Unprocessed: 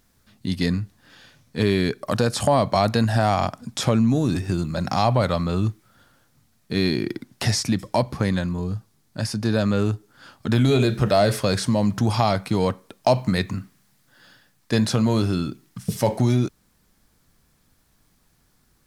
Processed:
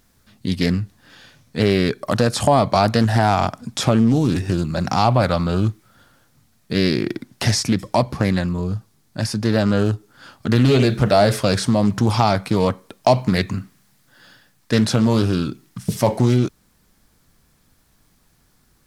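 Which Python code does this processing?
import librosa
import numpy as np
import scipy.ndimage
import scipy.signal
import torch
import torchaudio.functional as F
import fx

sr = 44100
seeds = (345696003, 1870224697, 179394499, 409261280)

y = fx.doppler_dist(x, sr, depth_ms=0.33)
y = y * librosa.db_to_amplitude(3.5)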